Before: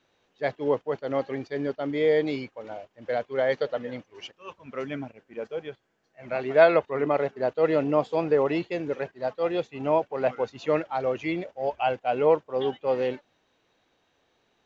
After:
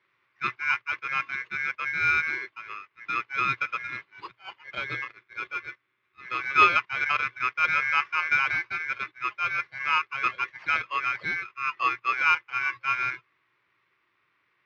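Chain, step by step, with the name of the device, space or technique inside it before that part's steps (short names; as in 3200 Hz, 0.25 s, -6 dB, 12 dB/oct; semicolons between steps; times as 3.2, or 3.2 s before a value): 3.89–5.58 dynamic EQ 1500 Hz, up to +7 dB, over -50 dBFS, Q 0.74; ring modulator pedal into a guitar cabinet (polarity switched at an audio rate 1900 Hz; speaker cabinet 92–3600 Hz, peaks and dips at 120 Hz +10 dB, 230 Hz -6 dB, 360 Hz +7 dB, 730 Hz -6 dB, 1100 Hz +9 dB, 2000 Hz +9 dB); gain -4.5 dB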